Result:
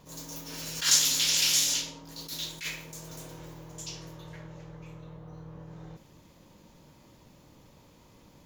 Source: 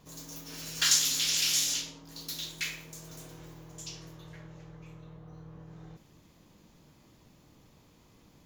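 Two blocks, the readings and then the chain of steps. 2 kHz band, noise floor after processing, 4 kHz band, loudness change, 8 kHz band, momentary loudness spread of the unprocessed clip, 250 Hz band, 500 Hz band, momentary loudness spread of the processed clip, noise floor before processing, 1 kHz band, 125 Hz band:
+1.0 dB, -57 dBFS, +2.0 dB, +2.0 dB, +2.5 dB, 22 LU, +3.0 dB, +4.5 dB, 23 LU, -61 dBFS, +2.5 dB, +3.0 dB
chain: small resonant body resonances 550/920 Hz, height 7 dB; attacks held to a fixed rise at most 160 dB/s; trim +3 dB

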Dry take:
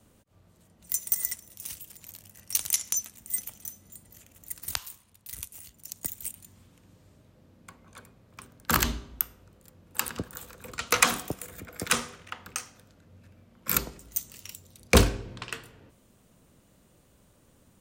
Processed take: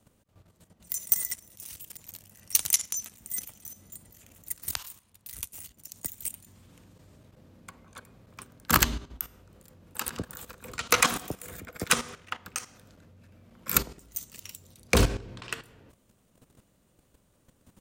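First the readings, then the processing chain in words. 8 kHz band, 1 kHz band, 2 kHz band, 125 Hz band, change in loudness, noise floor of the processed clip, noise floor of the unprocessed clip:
+0.5 dB, +0.5 dB, 0.0 dB, -1.5 dB, +0.5 dB, -67 dBFS, -62 dBFS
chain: level held to a coarse grid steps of 12 dB; trim +5 dB

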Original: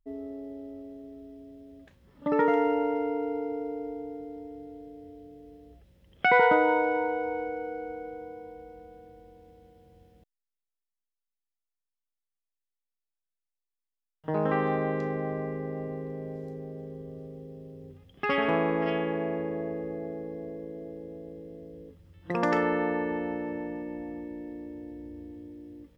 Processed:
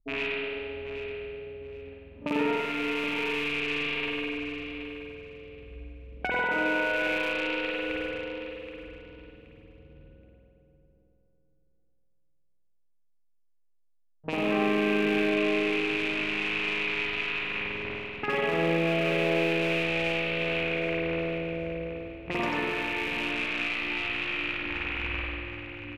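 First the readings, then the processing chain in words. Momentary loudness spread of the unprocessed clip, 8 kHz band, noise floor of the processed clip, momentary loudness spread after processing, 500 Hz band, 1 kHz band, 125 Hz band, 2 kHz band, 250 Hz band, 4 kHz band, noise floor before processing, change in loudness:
21 LU, no reading, -65 dBFS, 16 LU, -0.5 dB, -4.5 dB, +0.5 dB, +6.0 dB, +1.0 dB, +14.5 dB, under -85 dBFS, +1.0 dB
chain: rattle on loud lows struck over -43 dBFS, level -19 dBFS; level-controlled noise filter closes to 510 Hz, open at -25 dBFS; reverb removal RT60 0.62 s; treble shelf 5 kHz +7 dB; compression, threshold -35 dBFS, peak gain reduction 17.5 dB; feedback delay 774 ms, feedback 22%, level -11 dB; spring tank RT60 2.1 s, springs 48 ms, chirp 20 ms, DRR -6.5 dB; trim +3.5 dB

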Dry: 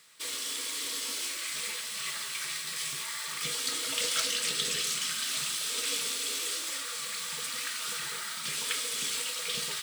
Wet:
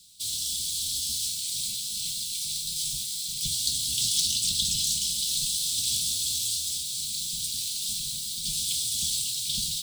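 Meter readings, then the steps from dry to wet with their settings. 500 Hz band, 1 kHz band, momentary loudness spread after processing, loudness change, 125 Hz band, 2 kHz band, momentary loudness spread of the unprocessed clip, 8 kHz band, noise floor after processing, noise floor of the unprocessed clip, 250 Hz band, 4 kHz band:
under -30 dB, under -30 dB, 6 LU, +4.5 dB, +10.5 dB, -14.5 dB, 6 LU, +5.5 dB, -34 dBFS, -38 dBFS, +1.5 dB, +4.5 dB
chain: octave divider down 2 oct, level 0 dB; elliptic band-stop 200–3700 Hz, stop band 40 dB; trim +6.5 dB

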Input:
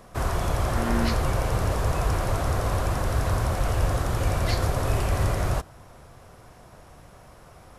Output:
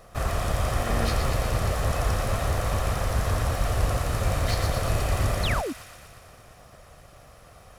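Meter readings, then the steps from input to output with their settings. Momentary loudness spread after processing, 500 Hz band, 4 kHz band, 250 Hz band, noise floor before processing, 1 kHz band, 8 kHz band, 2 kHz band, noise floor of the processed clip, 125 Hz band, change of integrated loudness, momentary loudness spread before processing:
2 LU, -0.5 dB, +2.5 dB, -3.0 dB, -50 dBFS, -0.5 dB, +1.5 dB, +1.0 dB, -51 dBFS, -1.0 dB, -0.5 dB, 2 LU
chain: comb filter that takes the minimum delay 1.6 ms; feedback echo behind a high-pass 118 ms, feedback 71%, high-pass 1.6 kHz, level -6 dB; painted sound fall, 5.43–5.73 s, 230–4600 Hz -30 dBFS

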